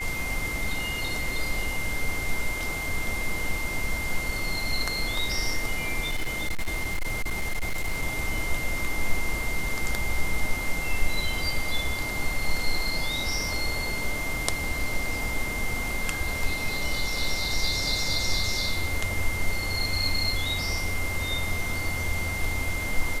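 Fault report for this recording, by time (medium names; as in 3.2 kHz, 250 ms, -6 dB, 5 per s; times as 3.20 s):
whine 2.1 kHz -31 dBFS
6.04–8.03 s: clipped -23 dBFS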